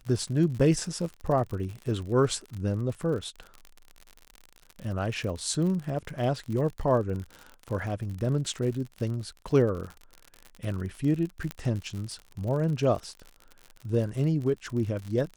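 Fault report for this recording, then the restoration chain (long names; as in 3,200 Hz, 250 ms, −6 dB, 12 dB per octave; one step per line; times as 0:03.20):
surface crackle 59 per second −34 dBFS
0:11.51: click −18 dBFS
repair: click removal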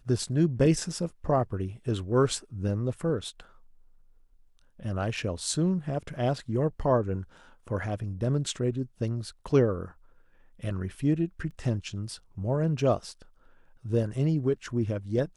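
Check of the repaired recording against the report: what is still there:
0:11.51: click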